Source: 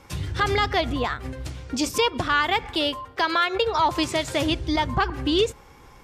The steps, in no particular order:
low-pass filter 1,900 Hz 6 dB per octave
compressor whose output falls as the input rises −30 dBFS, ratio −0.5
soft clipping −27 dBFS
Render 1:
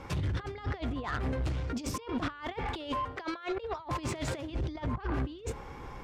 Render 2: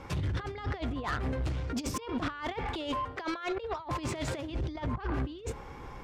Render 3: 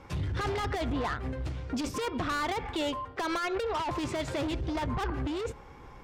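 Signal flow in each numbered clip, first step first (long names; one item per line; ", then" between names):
compressor whose output falls as the input rises, then low-pass filter, then soft clipping
low-pass filter, then compressor whose output falls as the input rises, then soft clipping
low-pass filter, then soft clipping, then compressor whose output falls as the input rises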